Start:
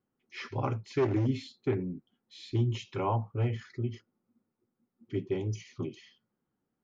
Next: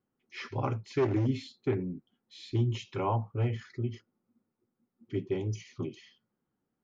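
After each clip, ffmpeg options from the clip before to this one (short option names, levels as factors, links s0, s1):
-af anull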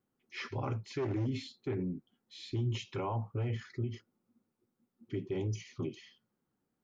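-af "alimiter=level_in=1.41:limit=0.0631:level=0:latency=1:release=57,volume=0.708"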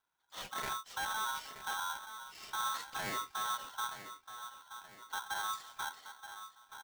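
-filter_complex "[0:a]asoftclip=type=hard:threshold=0.0316,asplit=2[s0][s1];[s1]adelay=926,lowpass=f=2100:p=1,volume=0.282,asplit=2[s2][s3];[s3]adelay=926,lowpass=f=2100:p=1,volume=0.48,asplit=2[s4][s5];[s5]adelay=926,lowpass=f=2100:p=1,volume=0.48,asplit=2[s6][s7];[s7]adelay=926,lowpass=f=2100:p=1,volume=0.48,asplit=2[s8][s9];[s9]adelay=926,lowpass=f=2100:p=1,volume=0.48[s10];[s2][s4][s6][s8][s10]amix=inputs=5:normalize=0[s11];[s0][s11]amix=inputs=2:normalize=0,aeval=exprs='val(0)*sgn(sin(2*PI*1200*n/s))':c=same,volume=0.708"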